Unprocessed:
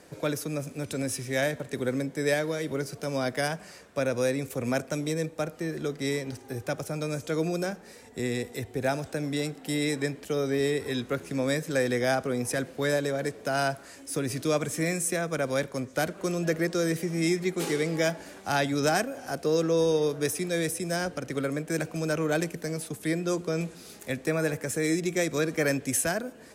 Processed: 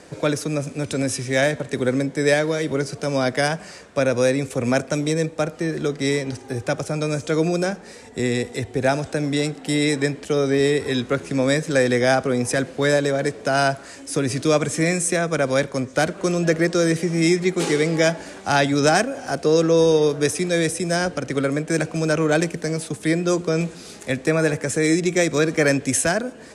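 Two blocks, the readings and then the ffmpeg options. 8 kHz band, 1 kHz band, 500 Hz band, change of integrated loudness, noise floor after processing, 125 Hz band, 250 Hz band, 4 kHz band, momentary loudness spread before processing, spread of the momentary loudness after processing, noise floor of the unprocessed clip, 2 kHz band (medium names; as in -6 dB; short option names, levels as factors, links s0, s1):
+7.0 dB, +8.0 dB, +8.0 dB, +8.0 dB, -41 dBFS, +8.0 dB, +8.0 dB, +8.0 dB, 7 LU, 7 LU, -49 dBFS, +8.0 dB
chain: -af "lowpass=f=9600:w=0.5412,lowpass=f=9600:w=1.3066,volume=2.51"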